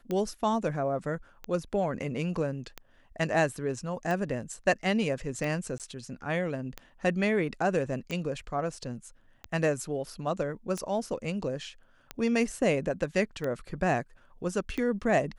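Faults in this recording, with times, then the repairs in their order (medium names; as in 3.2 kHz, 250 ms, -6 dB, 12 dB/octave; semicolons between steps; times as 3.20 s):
tick 45 rpm -20 dBFS
5.78–5.80 s: dropout 18 ms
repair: de-click; interpolate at 5.78 s, 18 ms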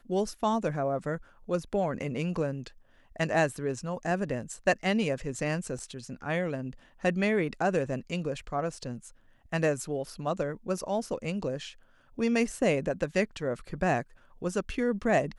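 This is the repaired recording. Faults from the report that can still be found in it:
nothing left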